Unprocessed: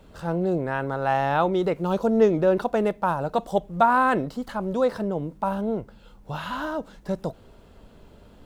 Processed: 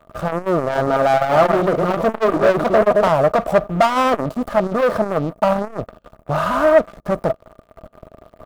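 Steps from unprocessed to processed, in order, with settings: 0.58–3.09 reverse delay 0.147 s, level -6.5 dB; bell 4500 Hz -10.5 dB 2.4 oct; sample leveller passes 5; small resonant body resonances 640/1200 Hz, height 15 dB, ringing for 40 ms; core saturation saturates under 650 Hz; gain -6 dB

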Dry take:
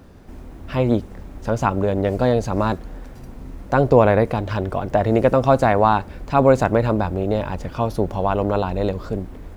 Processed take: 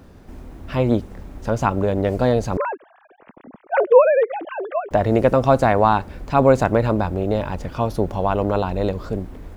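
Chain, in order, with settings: 2.57–4.91 sine-wave speech

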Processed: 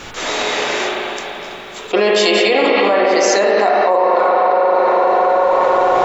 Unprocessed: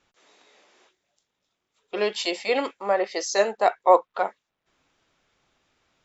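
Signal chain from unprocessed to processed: spring tank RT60 3.7 s, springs 38/49/56 ms, chirp 50 ms, DRR -2.5 dB; fast leveller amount 100%; gain -3.5 dB

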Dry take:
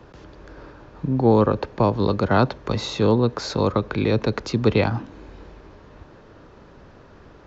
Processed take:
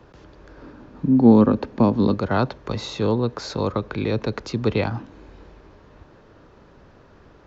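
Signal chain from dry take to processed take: 0.62–2.14 bell 240 Hz +13.5 dB 0.65 oct; gain -3 dB

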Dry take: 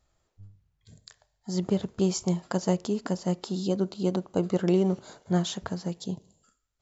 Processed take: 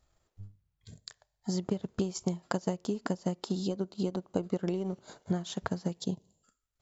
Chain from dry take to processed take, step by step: compressor 6:1, threshold -30 dBFS, peak gain reduction 11.5 dB; transient shaper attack +4 dB, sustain -7 dB

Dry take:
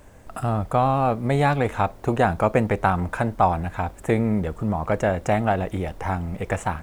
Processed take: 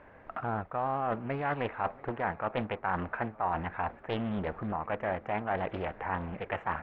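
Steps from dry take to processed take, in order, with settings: tilt +2.5 dB/oct; reverse; compressor 6:1, threshold -28 dBFS, peak gain reduction 14 dB; reverse; LPF 2100 Hz 24 dB/oct; low shelf 160 Hz -3.5 dB; on a send: swung echo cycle 0.914 s, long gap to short 3:1, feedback 47%, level -23 dB; on the sum: Doppler distortion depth 0.76 ms

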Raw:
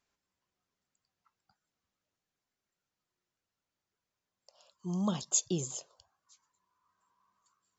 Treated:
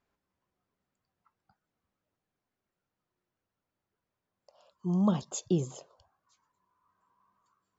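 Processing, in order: LPF 1100 Hz 6 dB/oct; gain +6 dB

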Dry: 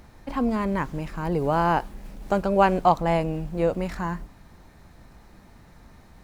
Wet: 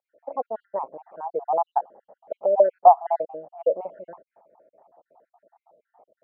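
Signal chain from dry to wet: random spectral dropouts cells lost 60%; Butterworth band-pass 650 Hz, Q 2.1; gain +8.5 dB

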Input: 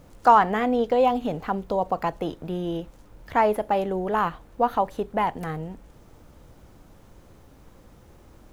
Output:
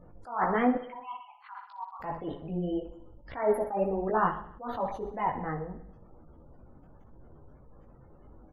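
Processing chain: spectral gate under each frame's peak -25 dB strong; 0.75–2 steep high-pass 880 Hz 72 dB/oct; on a send: feedback echo 62 ms, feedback 59%, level -12.5 dB; on the sum: chorus voices 4, 0.86 Hz, delay 17 ms, depth 4.9 ms; attack slew limiter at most 130 dB/s

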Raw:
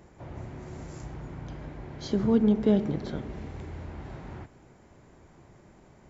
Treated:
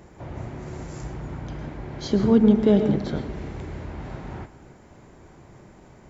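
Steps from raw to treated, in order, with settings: on a send at -5.5 dB: tremolo 3.3 Hz, depth 97% + reverb RT60 0.75 s, pre-delay 98 ms; on the sum: gain +5.5 dB

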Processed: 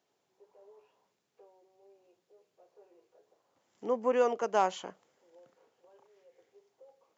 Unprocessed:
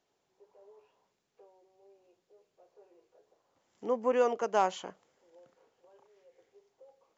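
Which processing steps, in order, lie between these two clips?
HPF 98 Hz

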